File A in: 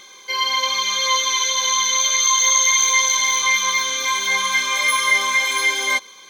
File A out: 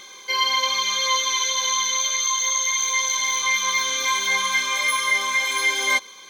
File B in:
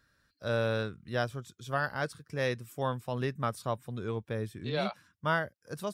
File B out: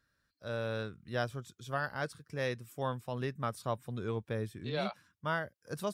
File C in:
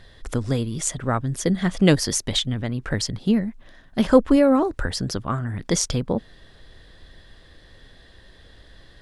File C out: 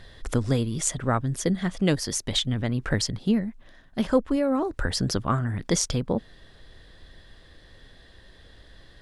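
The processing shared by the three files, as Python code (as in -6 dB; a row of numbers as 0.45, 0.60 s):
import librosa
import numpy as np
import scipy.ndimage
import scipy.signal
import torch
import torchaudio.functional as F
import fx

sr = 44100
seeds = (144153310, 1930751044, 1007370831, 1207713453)

y = fx.rider(x, sr, range_db=5, speed_s=0.5)
y = y * librosa.db_to_amplitude(-3.5)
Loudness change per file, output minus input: -3.5, -3.5, -4.0 LU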